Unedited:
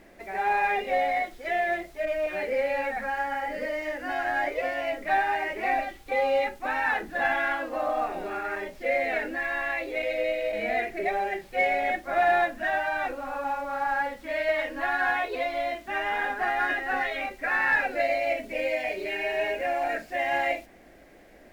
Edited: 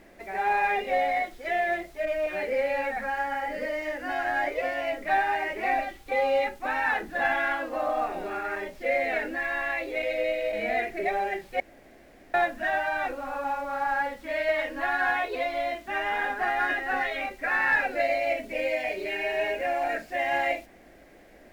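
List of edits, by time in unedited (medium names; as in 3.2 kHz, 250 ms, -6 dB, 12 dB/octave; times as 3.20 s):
11.60–12.34 s: room tone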